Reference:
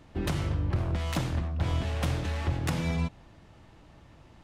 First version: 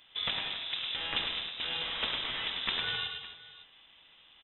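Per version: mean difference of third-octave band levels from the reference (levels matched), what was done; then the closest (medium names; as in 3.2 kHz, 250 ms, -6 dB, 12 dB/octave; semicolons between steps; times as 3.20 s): 12.0 dB: high-pass 290 Hz 12 dB/octave; in parallel at -10 dB: word length cut 6-bit, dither none; on the sum: multi-tap echo 105/198/260/558 ms -6/-12.5/-12.5/-18.5 dB; frequency inversion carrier 3.8 kHz; trim -1 dB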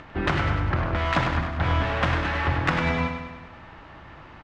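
5.5 dB: peaking EQ 1.5 kHz +13 dB 2.2 oct; upward compressor, threshold -42 dBFS; distance through air 130 m; on a send: feedback delay 100 ms, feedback 57%, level -7 dB; on the sum: trim +2.5 dB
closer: second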